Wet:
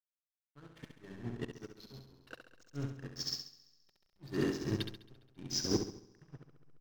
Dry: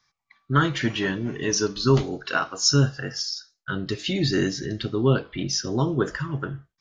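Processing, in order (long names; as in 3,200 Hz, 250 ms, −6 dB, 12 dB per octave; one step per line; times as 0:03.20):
volume swells 734 ms
far-end echo of a speakerphone 160 ms, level −16 dB
slack as between gear wheels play −30 dBFS
on a send: flutter between parallel walls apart 11.6 metres, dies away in 1.3 s
on the sum: expander for the loud parts 2.5 to 1, over −39 dBFS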